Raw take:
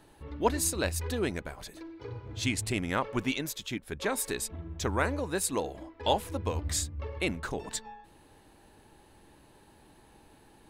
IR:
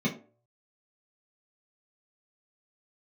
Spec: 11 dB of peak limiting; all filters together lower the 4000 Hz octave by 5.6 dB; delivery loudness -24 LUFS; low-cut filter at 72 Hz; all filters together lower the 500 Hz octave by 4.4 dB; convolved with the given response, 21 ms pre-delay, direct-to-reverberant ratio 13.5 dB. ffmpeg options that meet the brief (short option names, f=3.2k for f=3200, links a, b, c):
-filter_complex "[0:a]highpass=72,equalizer=f=500:t=o:g=-5.5,equalizer=f=4k:t=o:g=-7,alimiter=level_in=1dB:limit=-24dB:level=0:latency=1,volume=-1dB,asplit=2[a][b];[1:a]atrim=start_sample=2205,adelay=21[c];[b][c]afir=irnorm=-1:irlink=0,volume=-22dB[d];[a][d]amix=inputs=2:normalize=0,volume=12.5dB"